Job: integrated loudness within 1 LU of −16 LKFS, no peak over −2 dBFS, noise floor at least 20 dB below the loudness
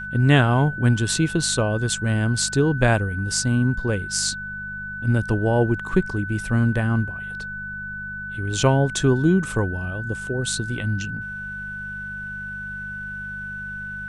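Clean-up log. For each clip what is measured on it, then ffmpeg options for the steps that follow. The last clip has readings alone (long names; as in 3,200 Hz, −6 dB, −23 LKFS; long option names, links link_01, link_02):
mains hum 50 Hz; hum harmonics up to 200 Hz; level of the hum −39 dBFS; interfering tone 1,500 Hz; level of the tone −30 dBFS; integrated loudness −23.0 LKFS; sample peak −3.5 dBFS; target loudness −16.0 LKFS
→ -af "bandreject=frequency=50:width_type=h:width=4,bandreject=frequency=100:width_type=h:width=4,bandreject=frequency=150:width_type=h:width=4,bandreject=frequency=200:width_type=h:width=4"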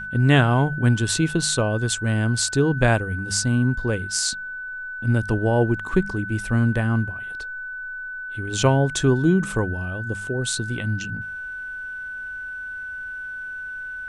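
mains hum none found; interfering tone 1,500 Hz; level of the tone −30 dBFS
→ -af "bandreject=frequency=1500:width=30"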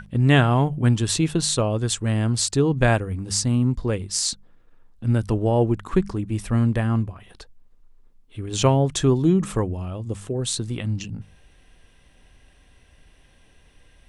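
interfering tone none found; integrated loudness −22.0 LKFS; sample peak −4.0 dBFS; target loudness −16.0 LKFS
→ -af "volume=6dB,alimiter=limit=-2dB:level=0:latency=1"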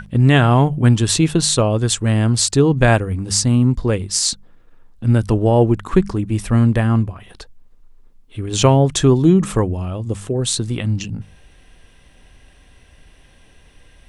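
integrated loudness −16.5 LKFS; sample peak −2.0 dBFS; background noise floor −49 dBFS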